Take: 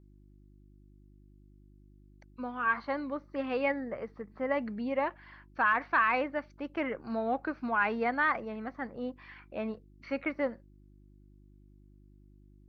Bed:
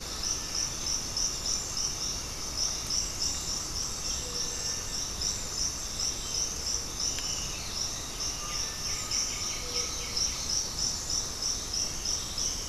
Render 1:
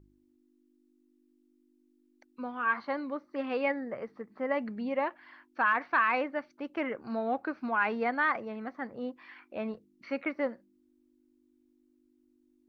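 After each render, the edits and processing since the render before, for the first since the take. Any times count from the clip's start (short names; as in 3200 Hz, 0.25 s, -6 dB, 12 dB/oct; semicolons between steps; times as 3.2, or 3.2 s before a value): de-hum 50 Hz, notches 4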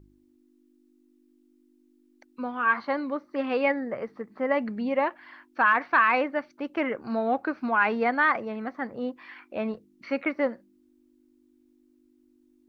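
gain +5.5 dB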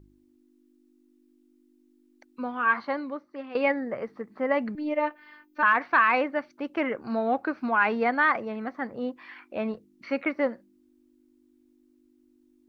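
2.74–3.55 fade out, to -14 dB; 4.75–5.63 robotiser 301 Hz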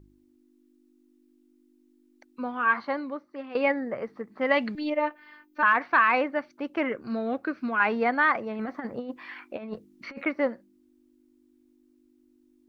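4.41–4.9 bell 3700 Hz +14.5 dB 1.5 oct; 6.92–7.8 bell 830 Hz -12.5 dB 0.6 oct; 8.59–10.25 negative-ratio compressor -33 dBFS, ratio -0.5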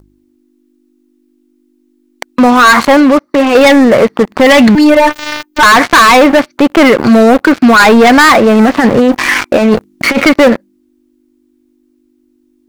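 sample leveller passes 5; maximiser +19 dB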